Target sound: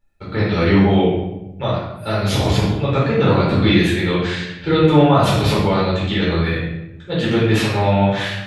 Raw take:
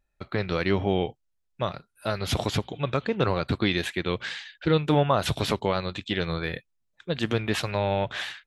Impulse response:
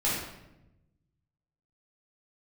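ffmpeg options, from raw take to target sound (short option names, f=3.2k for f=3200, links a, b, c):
-filter_complex "[1:a]atrim=start_sample=2205[a];[0:a][a]afir=irnorm=-1:irlink=0,volume=-1.5dB"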